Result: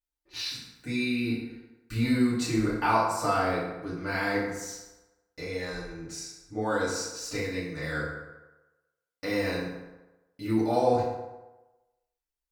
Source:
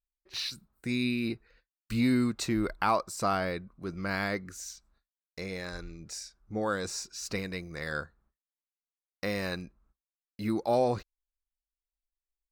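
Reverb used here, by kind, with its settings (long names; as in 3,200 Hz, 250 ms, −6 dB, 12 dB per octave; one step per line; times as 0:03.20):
feedback delay network reverb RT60 1.1 s, low-frequency decay 0.8×, high-frequency decay 0.6×, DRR −9 dB
level −6.5 dB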